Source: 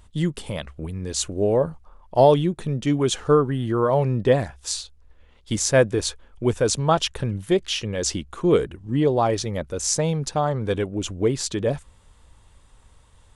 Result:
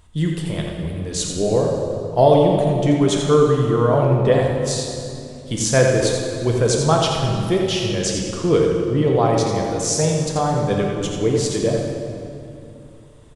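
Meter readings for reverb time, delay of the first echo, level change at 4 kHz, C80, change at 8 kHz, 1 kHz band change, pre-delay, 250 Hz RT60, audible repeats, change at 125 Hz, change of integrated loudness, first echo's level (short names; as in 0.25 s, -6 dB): 2.7 s, 85 ms, +3.0 dB, 1.5 dB, +2.5 dB, +3.5 dB, 3 ms, 3.3 s, 1, +5.5 dB, +4.0 dB, -6.5 dB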